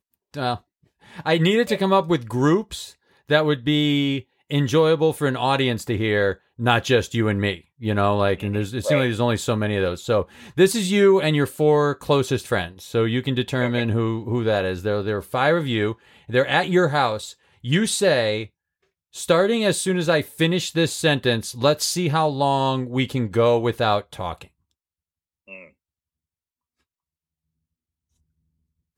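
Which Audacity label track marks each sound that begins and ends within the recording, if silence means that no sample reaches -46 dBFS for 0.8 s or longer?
25.480000	25.690000	sound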